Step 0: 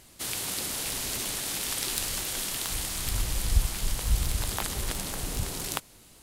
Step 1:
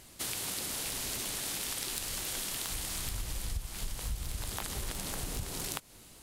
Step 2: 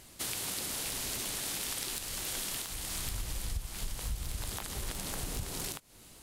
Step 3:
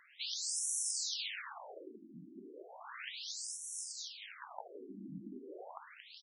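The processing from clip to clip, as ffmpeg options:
-af "acompressor=threshold=-33dB:ratio=6"
-af "alimiter=limit=-20dB:level=0:latency=1:release=283"
-af "aecho=1:1:229|458|687|916|1145:0.501|0.216|0.0927|0.0398|0.0171,asubboost=boost=5.5:cutoff=110,afftfilt=real='re*between(b*sr/1024,240*pow(7900/240,0.5+0.5*sin(2*PI*0.34*pts/sr))/1.41,240*pow(7900/240,0.5+0.5*sin(2*PI*0.34*pts/sr))*1.41)':imag='im*between(b*sr/1024,240*pow(7900/240,0.5+0.5*sin(2*PI*0.34*pts/sr))/1.41,240*pow(7900/240,0.5+0.5*sin(2*PI*0.34*pts/sr))*1.41)':win_size=1024:overlap=0.75,volume=3dB"

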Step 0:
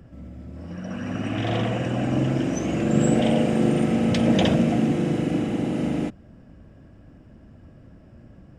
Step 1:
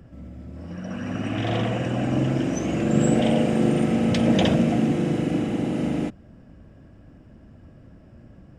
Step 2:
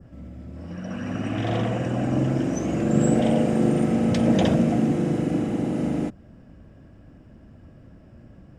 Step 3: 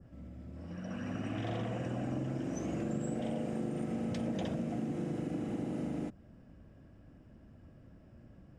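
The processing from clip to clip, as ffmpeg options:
-af anull
-af "adynamicequalizer=threshold=0.00447:dfrequency=2900:dqfactor=1.1:tfrequency=2900:tqfactor=1.1:attack=5:release=100:ratio=0.375:range=3:mode=cutabove:tftype=bell"
-af "acompressor=threshold=-24dB:ratio=6,volume=-8.5dB"

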